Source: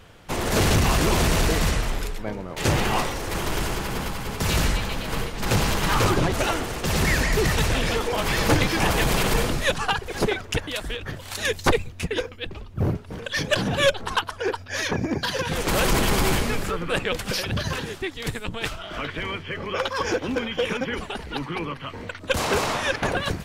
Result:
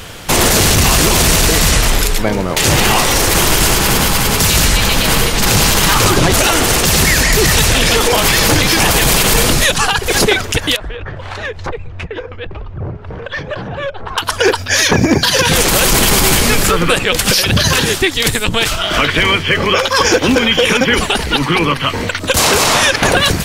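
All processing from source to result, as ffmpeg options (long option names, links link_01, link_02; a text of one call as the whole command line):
ffmpeg -i in.wav -filter_complex "[0:a]asettb=1/sr,asplit=3[link_01][link_02][link_03];[link_01]atrim=end=10.764[link_04];[link_02]atrim=start=10.76:end=14.18,asetpts=PTS-STARTPTS,afade=type=in:duration=0.004:curve=qsin,afade=type=out:start_time=3.416:duration=0.004:curve=qsin,lowpass=1400,acompressor=threshold=-38dB:ratio=4:attack=3.2:release=140:knee=1:detection=peak,equalizer=frequency=240:width_type=o:width=1:gain=-8[link_05];[link_03]atrim=start=14.176[link_06];[link_04][link_05]acrossfade=duration=0.004:curve1=hsin:curve2=qsin[link_07];[link_07][link_06]acrossfade=duration=0.004:curve1=qsin:curve2=hsin,highshelf=frequency=3200:gain=11,acompressor=threshold=-23dB:ratio=6,alimiter=level_in=17.5dB:limit=-1dB:release=50:level=0:latency=1,volume=-1dB" out.wav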